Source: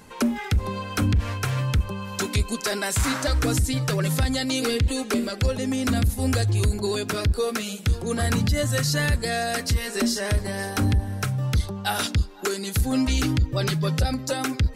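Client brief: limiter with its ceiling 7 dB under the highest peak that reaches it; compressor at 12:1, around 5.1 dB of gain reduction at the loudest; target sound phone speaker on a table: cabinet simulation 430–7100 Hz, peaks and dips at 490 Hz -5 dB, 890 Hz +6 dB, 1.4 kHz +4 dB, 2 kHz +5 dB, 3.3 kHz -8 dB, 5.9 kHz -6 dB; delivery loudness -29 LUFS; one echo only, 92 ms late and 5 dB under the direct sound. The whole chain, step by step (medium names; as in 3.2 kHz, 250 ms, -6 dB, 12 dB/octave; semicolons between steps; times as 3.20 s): compression 12:1, threshold -22 dBFS; peak limiter -21 dBFS; cabinet simulation 430–7100 Hz, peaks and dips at 490 Hz -5 dB, 890 Hz +6 dB, 1.4 kHz +4 dB, 2 kHz +5 dB, 3.3 kHz -8 dB, 5.9 kHz -6 dB; delay 92 ms -5 dB; trim +4 dB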